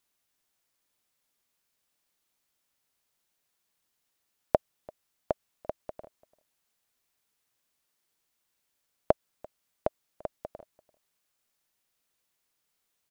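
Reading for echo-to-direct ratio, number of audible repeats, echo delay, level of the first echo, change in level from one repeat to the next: -23.5 dB, 1, 0.341 s, -23.5 dB, no steady repeat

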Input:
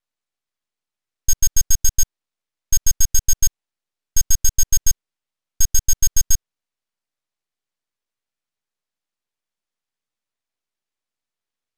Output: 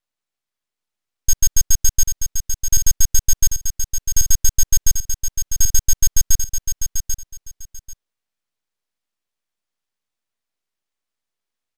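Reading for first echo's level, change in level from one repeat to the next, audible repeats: -7.0 dB, -14.0 dB, 2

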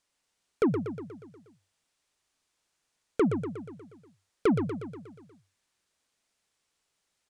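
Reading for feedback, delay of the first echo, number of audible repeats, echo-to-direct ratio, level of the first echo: 58%, 0.12 s, 6, -5.5 dB, -7.5 dB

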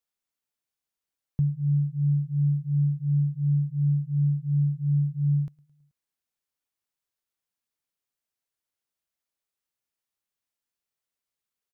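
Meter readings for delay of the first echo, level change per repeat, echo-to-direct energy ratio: 0.108 s, -4.5 dB, -22.0 dB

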